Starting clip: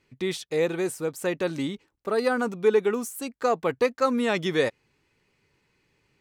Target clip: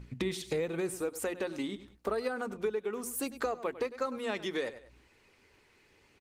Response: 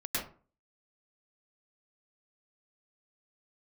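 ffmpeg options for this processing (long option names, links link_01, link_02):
-af "adynamicequalizer=threshold=0.00562:dfrequency=200:dqfactor=4.8:tfrequency=200:tqfactor=4.8:attack=5:release=100:ratio=0.375:range=1.5:mode=boostabove:tftype=bell,acontrast=24,aecho=1:1:98|196:0.133|0.0253,aeval=exprs='val(0)+0.00631*(sin(2*PI*60*n/s)+sin(2*PI*2*60*n/s)/2+sin(2*PI*3*60*n/s)/3+sin(2*PI*4*60*n/s)/4+sin(2*PI*5*60*n/s)/5)':channel_layout=same,acompressor=threshold=-32dB:ratio=12,asetnsamples=nb_out_samples=441:pad=0,asendcmd='0.94 equalizer g -13.5',equalizer=frequency=150:width_type=o:width=0.62:gain=2,bandreject=frequency=60:width_type=h:width=6,bandreject=frequency=120:width_type=h:width=6,bandreject=frequency=180:width_type=h:width=6,bandreject=frequency=240:width_type=h:width=6,bandreject=frequency=300:width_type=h:width=6,bandreject=frequency=360:width_type=h:width=6,aresample=32000,aresample=44100,volume=2.5dB" -ar 48000 -c:a libopus -b:a 20k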